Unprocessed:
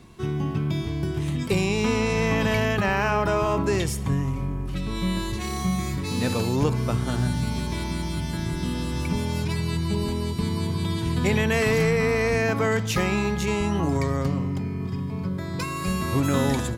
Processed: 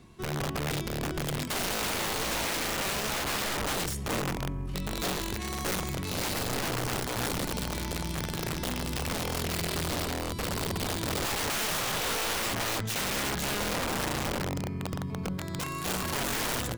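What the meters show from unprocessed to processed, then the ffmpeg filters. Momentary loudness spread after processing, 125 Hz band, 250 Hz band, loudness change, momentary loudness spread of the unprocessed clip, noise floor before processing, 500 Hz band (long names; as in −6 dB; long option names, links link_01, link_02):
5 LU, −10.5 dB, −10.0 dB, −5.5 dB, 7 LU, −30 dBFS, −9.0 dB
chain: -af "aeval=exprs='0.282*(cos(1*acos(clip(val(0)/0.282,-1,1)))-cos(1*PI/2))+0.00794*(cos(8*acos(clip(val(0)/0.282,-1,1)))-cos(8*PI/2))':channel_layout=same,aeval=exprs='(mod(10.6*val(0)+1,2)-1)/10.6':channel_layout=same,volume=-5dB"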